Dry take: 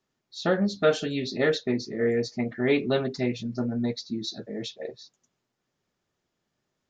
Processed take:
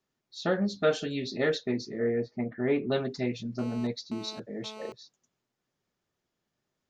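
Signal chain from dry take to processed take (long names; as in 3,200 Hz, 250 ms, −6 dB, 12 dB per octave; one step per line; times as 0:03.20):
0:01.99–0:02.92: low-pass filter 1,800 Hz 12 dB per octave
0:03.59–0:04.92: phone interference −41 dBFS
level −3.5 dB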